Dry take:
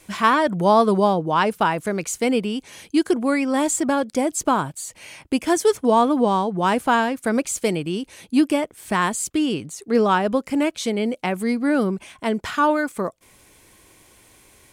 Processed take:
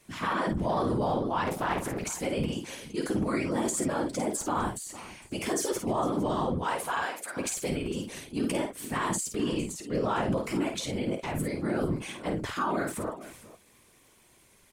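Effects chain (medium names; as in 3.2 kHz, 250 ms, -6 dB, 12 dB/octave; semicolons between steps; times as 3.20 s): transient shaper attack -2 dB, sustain +11 dB; flange 0.99 Hz, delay 8.1 ms, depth 3 ms, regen -36%; whisper effect; 6.58–7.36 s: high-pass 430 Hz -> 1.2 kHz 12 dB/octave; on a send: multi-tap echo 51/456 ms -6.5/-17.5 dB; on the sum: peak limiter -13.5 dBFS, peak gain reduction 8.5 dB; 1.47–2.03 s: loudspeaker Doppler distortion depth 0.49 ms; trim -6 dB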